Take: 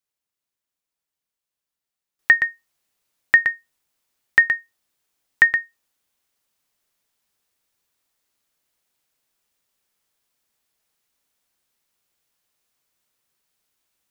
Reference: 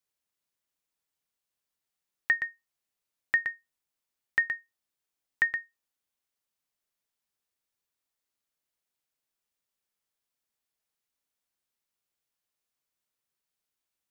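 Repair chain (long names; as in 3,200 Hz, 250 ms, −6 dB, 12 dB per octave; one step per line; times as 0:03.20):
level 0 dB, from 0:02.19 −11.5 dB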